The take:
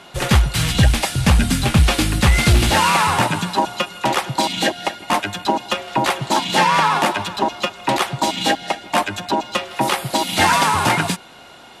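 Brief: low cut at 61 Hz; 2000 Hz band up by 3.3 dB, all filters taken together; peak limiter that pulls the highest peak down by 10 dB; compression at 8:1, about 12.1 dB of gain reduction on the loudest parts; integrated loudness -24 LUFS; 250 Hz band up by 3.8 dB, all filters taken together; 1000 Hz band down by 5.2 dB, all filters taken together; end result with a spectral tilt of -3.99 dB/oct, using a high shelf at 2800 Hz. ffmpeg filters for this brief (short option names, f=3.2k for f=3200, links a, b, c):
-af "highpass=61,equalizer=f=250:t=o:g=5.5,equalizer=f=1k:t=o:g=-8,equalizer=f=2k:t=o:g=7.5,highshelf=f=2.8k:g=-3,acompressor=threshold=-21dB:ratio=8,volume=5dB,alimiter=limit=-14.5dB:level=0:latency=1"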